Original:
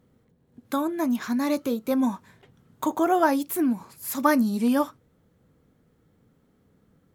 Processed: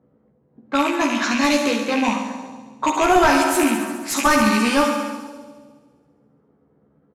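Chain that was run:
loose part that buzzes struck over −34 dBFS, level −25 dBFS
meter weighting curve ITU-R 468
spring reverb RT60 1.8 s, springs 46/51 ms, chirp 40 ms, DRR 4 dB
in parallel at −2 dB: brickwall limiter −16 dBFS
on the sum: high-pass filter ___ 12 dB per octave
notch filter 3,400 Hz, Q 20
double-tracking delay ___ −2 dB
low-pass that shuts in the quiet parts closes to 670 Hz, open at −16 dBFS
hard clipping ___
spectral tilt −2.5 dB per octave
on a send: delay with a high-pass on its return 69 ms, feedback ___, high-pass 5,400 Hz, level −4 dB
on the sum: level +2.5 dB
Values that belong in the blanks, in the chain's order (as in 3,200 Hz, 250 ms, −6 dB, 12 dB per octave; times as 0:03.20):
58 Hz, 14 ms, −13 dBFS, 72%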